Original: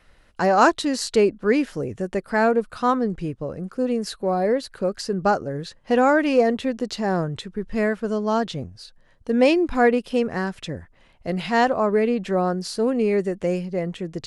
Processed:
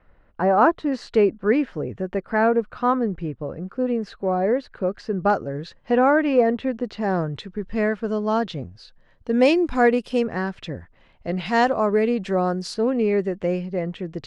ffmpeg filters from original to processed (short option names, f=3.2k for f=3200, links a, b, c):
-af "asetnsamples=n=441:p=0,asendcmd='0.92 lowpass f 2400;5.3 lowpass f 4100;5.91 lowpass f 2400;7.01 lowpass f 4200;9.33 lowpass f 8800;10.24 lowpass f 4000;11.46 lowpass f 7700;12.74 lowpass f 3700',lowpass=1.4k"